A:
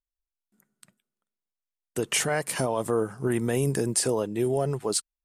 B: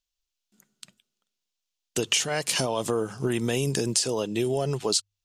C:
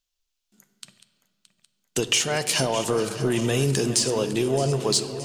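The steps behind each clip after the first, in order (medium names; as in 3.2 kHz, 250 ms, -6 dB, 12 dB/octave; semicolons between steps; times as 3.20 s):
high-order bell 4.3 kHz +11 dB; hum notches 50/100 Hz; compression 5:1, threshold -25 dBFS, peak gain reduction 11 dB; trim +3 dB
backward echo that repeats 310 ms, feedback 76%, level -14 dB; in parallel at -7 dB: saturation -23 dBFS, distortion -12 dB; on the sum: reverberation RT60 2.2 s, pre-delay 7 ms, DRR 10.5 dB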